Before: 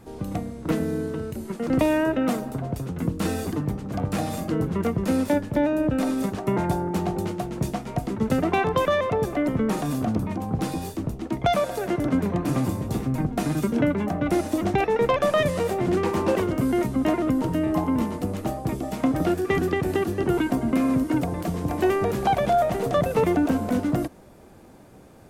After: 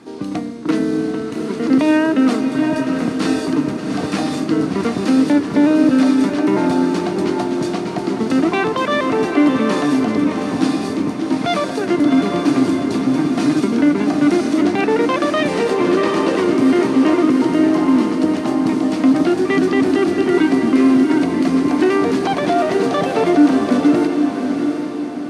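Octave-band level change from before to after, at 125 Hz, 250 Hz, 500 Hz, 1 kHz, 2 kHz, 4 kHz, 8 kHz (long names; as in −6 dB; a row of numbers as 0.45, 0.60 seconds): −1.0, +10.5, +6.0, +5.0, +8.5, +9.5, +5.5 decibels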